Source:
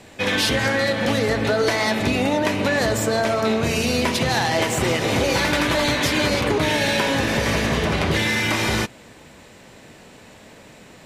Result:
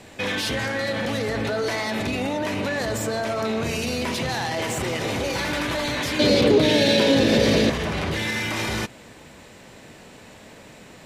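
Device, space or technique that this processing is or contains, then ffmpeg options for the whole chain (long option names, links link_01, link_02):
soft clipper into limiter: -filter_complex "[0:a]asoftclip=type=tanh:threshold=-8.5dB,alimiter=limit=-18dB:level=0:latency=1,asettb=1/sr,asplit=3[link_01][link_02][link_03];[link_01]atrim=end=6.194[link_04];[link_02]atrim=start=6.19:end=7.7,asetpts=PTS-STARTPTS,afade=type=in:duration=0.004:curve=qsin,afade=type=out:start_time=1.506:duration=0.004:curve=qsin,equalizer=frequency=125:width_type=o:width=1:gain=4,equalizer=frequency=250:width_type=o:width=1:gain=9,equalizer=frequency=500:width_type=o:width=1:gain=11,equalizer=frequency=1000:width_type=o:width=1:gain=-4,equalizer=frequency=4000:width_type=o:width=1:gain=10[link_05];[link_03]atrim=start=7.696[link_06];[link_04][link_05]acrossfade=duration=0.004:curve1=hsin:curve2=qsin[link_07];[link_07][link_06]acrossfade=duration=0.004:curve1=qsin:curve2=hsin"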